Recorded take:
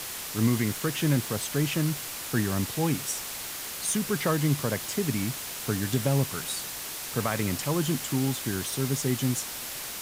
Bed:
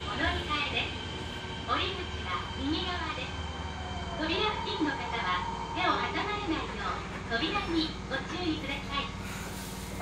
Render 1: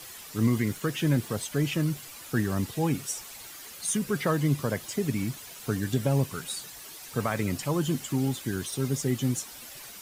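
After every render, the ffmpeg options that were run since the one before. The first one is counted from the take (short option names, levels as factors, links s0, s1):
-af "afftdn=nr=11:nf=-37"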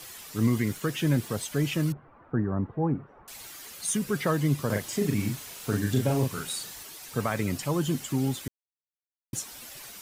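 -filter_complex "[0:a]asettb=1/sr,asplit=3[s0][s1][s2];[s0]atrim=end=1.924[s3];[s1]atrim=start=1.92:end=3.28,asetpts=PTS-STARTPTS,afade=t=in:d=0.004:c=qsin,afade=t=out:st=1.356:d=0.004:c=qsin,lowpass=f=1300:w=0.5412,lowpass=f=1300:w=1.3066[s4];[s2]atrim=start=3.276[s5];[s3][s4]acrossfade=d=0.004:c1=hsin:c2=qsin[s6];[s6][s5]acrossfade=d=0.004:c1=qsin:c2=hsin,asettb=1/sr,asplit=3[s7][s8][s9];[s7]atrim=end=4.664[s10];[s8]atrim=start=4.66:end=6.83,asetpts=PTS-STARTPTS,afade=t=in:d=0.004:c=qsin,afade=t=out:st=2.166:d=0.004:c=qsin,asplit=2[s11][s12];[s12]adelay=39,volume=0.708[s13];[s11][s13]amix=inputs=2:normalize=0,atrim=end_sample=95697[s14];[s9]atrim=start=6.826[s15];[s10][s14]acrossfade=d=0.004:c1=hsin:c2=qsin[s16];[s16][s15]acrossfade=d=0.004:c1=qsin:c2=hsin,asplit=3[s17][s18][s19];[s17]atrim=end=8.48,asetpts=PTS-STARTPTS,afade=t=out:st=8.476:d=0.004:c=hsin[s20];[s18]atrim=start=8.48:end=9.33,asetpts=PTS-STARTPTS,volume=0[s21];[s19]atrim=start=9.33,asetpts=PTS-STARTPTS,afade=t=in:d=0.004:c=hsin[s22];[s20][s21][s22]concat=n=3:v=0:a=1"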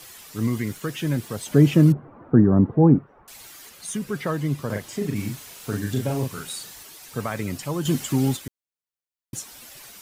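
-filter_complex "[0:a]asettb=1/sr,asplit=3[s0][s1][s2];[s0]atrim=end=1.464[s3];[s1]atrim=start=1.46:end=2.99,asetpts=PTS-STARTPTS,afade=t=in:d=0.004:c=qsin,afade=t=out:st=1.526:d=0.004:c=qsin,equalizer=f=240:w=0.33:g=13.5[s4];[s2]atrim=start=2.986[s5];[s3][s4]acrossfade=d=0.004:c1=hsin:c2=qsin[s6];[s6][s5]acrossfade=d=0.004:c1=qsin:c2=hsin,asettb=1/sr,asplit=3[s7][s8][s9];[s7]atrim=end=3.694[s10];[s8]atrim=start=3.69:end=5.16,asetpts=PTS-STARTPTS,afade=t=in:d=0.004:c=qsin,afade=t=out:st=1.466:d=0.004:c=qsin,highshelf=f=4200:g=-5[s11];[s9]atrim=start=5.156[s12];[s10][s11]acrossfade=d=0.004:c1=hsin:c2=qsin[s13];[s13][s12]acrossfade=d=0.004:c1=qsin:c2=hsin,asettb=1/sr,asplit=3[s14][s15][s16];[s14]atrim=end=7.854[s17];[s15]atrim=start=7.85:end=8.37,asetpts=PTS-STARTPTS,afade=t=in:d=0.004:c=qsin,afade=t=out:st=0.516:d=0.004:c=qsin,acontrast=49[s18];[s16]atrim=start=8.366[s19];[s17][s18]acrossfade=d=0.004:c1=hsin:c2=qsin[s20];[s20][s19]acrossfade=d=0.004:c1=qsin:c2=hsin"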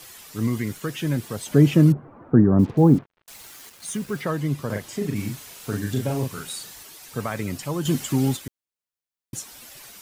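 -filter_complex "[0:a]asettb=1/sr,asplit=3[s0][s1][s2];[s0]atrim=end=2.594[s3];[s1]atrim=start=2.59:end=4.22,asetpts=PTS-STARTPTS,afade=t=in:d=0.004:c=qsin,afade=t=out:st=1.626:d=0.004:c=qsin,acrusher=bits=6:mix=0:aa=0.5[s4];[s2]atrim=start=4.216[s5];[s3][s4]acrossfade=d=0.004:c1=hsin:c2=qsin[s6];[s6][s5]acrossfade=d=0.004:c1=qsin:c2=hsin"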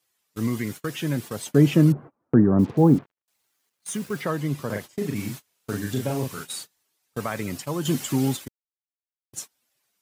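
-af "highpass=f=130:p=1,agate=range=0.0316:threshold=0.0178:ratio=16:detection=peak"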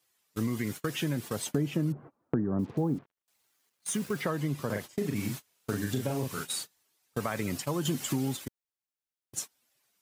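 -af "acompressor=threshold=0.0447:ratio=5"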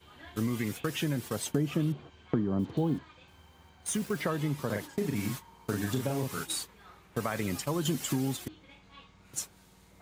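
-filter_complex "[1:a]volume=0.0944[s0];[0:a][s0]amix=inputs=2:normalize=0"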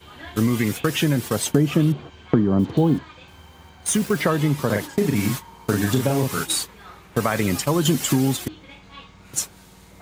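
-af "volume=3.55"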